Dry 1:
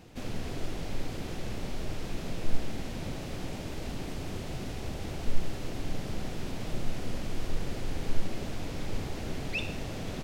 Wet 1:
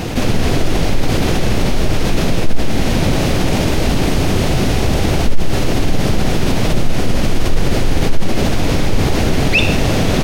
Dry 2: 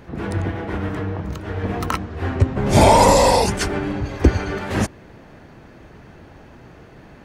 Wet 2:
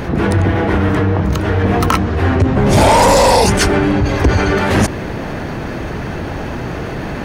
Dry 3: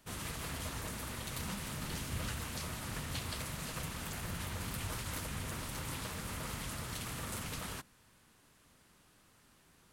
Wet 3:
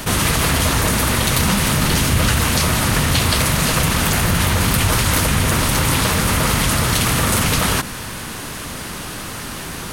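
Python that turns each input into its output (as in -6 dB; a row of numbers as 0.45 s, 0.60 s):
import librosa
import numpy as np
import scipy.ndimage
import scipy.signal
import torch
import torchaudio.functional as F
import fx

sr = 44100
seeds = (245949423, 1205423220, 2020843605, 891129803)

y = fx.notch(x, sr, hz=7500.0, q=19.0)
y = 10.0 ** (-12.0 / 20.0) * np.tanh(y / 10.0 ** (-12.0 / 20.0))
y = fx.env_flatten(y, sr, amount_pct=50)
y = librosa.util.normalize(y) * 10.0 ** (-1.5 / 20.0)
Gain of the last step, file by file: +12.0 dB, +6.0 dB, +21.5 dB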